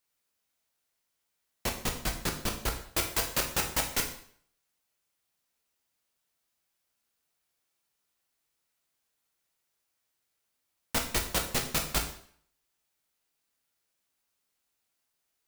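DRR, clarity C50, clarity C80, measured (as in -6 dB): 2.0 dB, 8.5 dB, 11.5 dB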